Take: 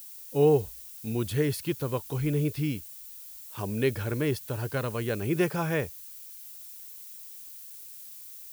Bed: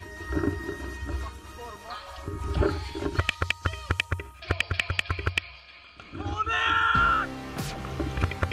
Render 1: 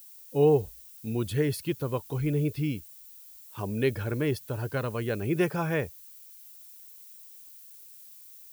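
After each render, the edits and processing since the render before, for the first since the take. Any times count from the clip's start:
broadband denoise 6 dB, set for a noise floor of −45 dBFS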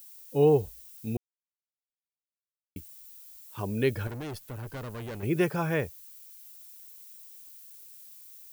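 0:01.17–0:02.76: silence
0:04.07–0:05.23: tube saturation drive 35 dB, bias 0.6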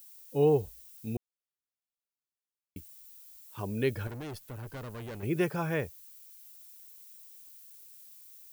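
level −3 dB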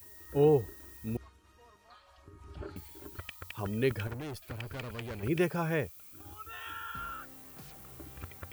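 mix in bed −19 dB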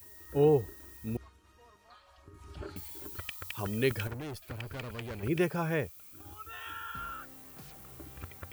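0:02.34–0:04.08: high-shelf EQ 2,500 Hz +7 dB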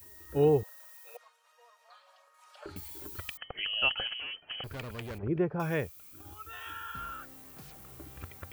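0:00.63–0:02.66: linear-phase brick-wall high-pass 460 Hz
0:03.37–0:04.64: voice inversion scrambler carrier 3,100 Hz
0:05.18–0:05.60: low-pass filter 1,100 Hz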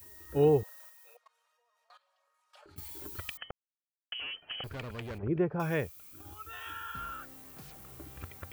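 0:00.89–0:02.78: output level in coarse steps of 19 dB
0:03.51–0:04.12: silence
0:04.69–0:05.52: high-shelf EQ 7,600 Hz −9 dB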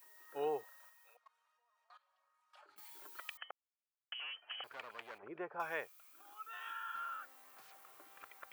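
Chebyshev high-pass filter 980 Hz, order 2
high-shelf EQ 2,400 Hz −9.5 dB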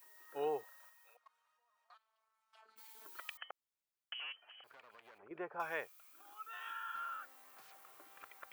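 0:01.94–0:03.06: phases set to zero 221 Hz
0:04.32–0:05.31: downward compressor 4 to 1, threshold −57 dBFS

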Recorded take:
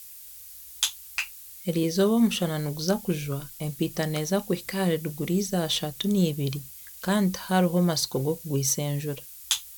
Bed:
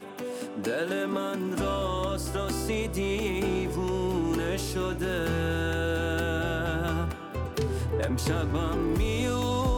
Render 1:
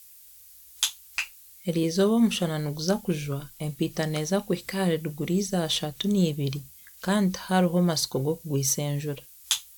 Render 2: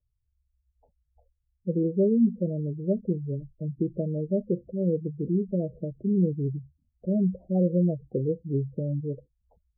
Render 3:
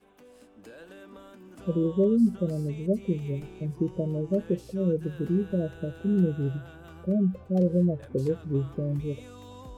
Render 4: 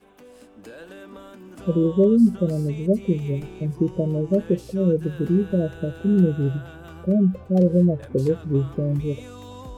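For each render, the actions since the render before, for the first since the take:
noise reduction from a noise print 6 dB
Butterworth low-pass 630 Hz 48 dB per octave; gate on every frequency bin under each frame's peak −15 dB strong
mix in bed −18.5 dB
level +6 dB

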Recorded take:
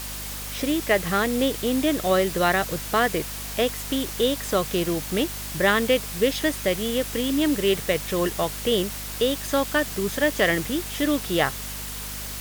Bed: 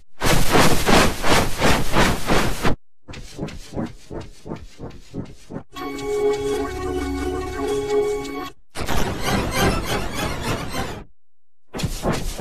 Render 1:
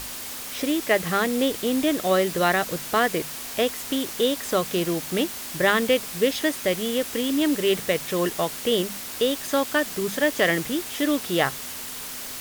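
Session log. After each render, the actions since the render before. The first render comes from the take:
mains-hum notches 50/100/150/200 Hz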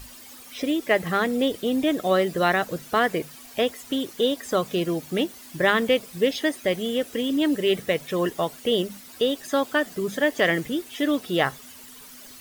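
broadband denoise 13 dB, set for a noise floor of −35 dBFS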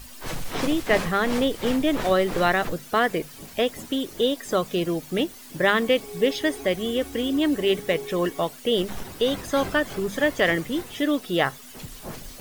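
mix in bed −15.5 dB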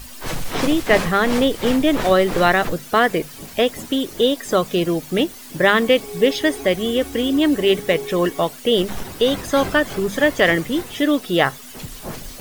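level +5.5 dB
brickwall limiter −1 dBFS, peak gain reduction 1 dB

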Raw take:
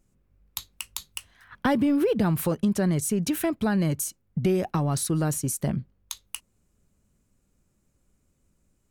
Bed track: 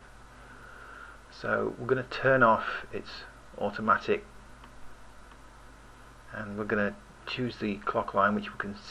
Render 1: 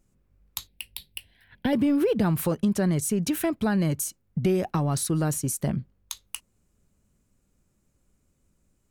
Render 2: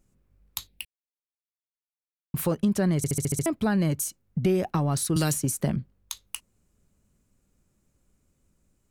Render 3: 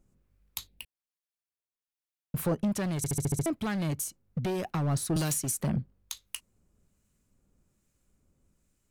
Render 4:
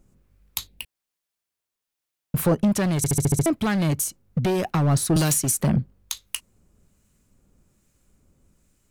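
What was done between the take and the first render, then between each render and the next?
0:00.67–0:01.73: phaser with its sweep stopped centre 2,900 Hz, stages 4
0:00.85–0:02.34: silence; 0:02.97: stutter in place 0.07 s, 7 plays; 0:05.16–0:05.76: multiband upward and downward compressor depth 100%
gain into a clipping stage and back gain 22.5 dB; two-band tremolo in antiphase 1.2 Hz, depth 50%, crossover 1,300 Hz
level +8.5 dB

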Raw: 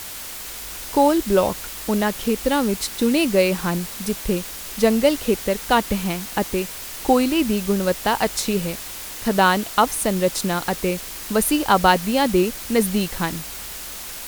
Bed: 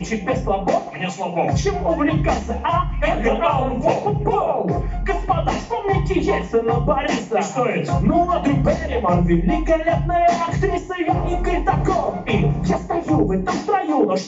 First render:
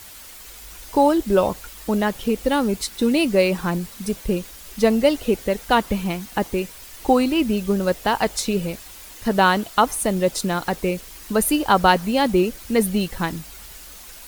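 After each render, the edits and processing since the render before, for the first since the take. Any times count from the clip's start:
broadband denoise 9 dB, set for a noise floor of −34 dBFS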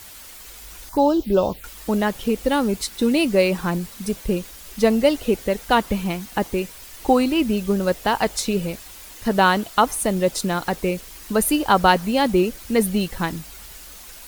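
0:00.89–0:01.64: phaser swept by the level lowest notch 420 Hz, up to 2,000 Hz, full sweep at −14.5 dBFS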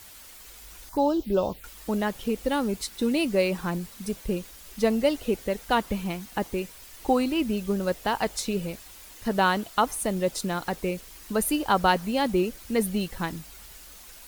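level −6 dB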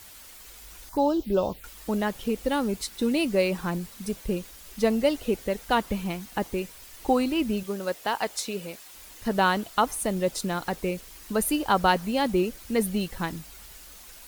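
0:07.63–0:08.94: high-pass filter 420 Hz 6 dB per octave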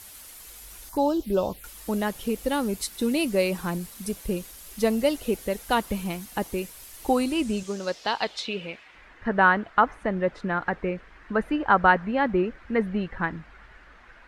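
low-pass filter sweep 12,000 Hz → 1,700 Hz, 0:07.10–0:09.15

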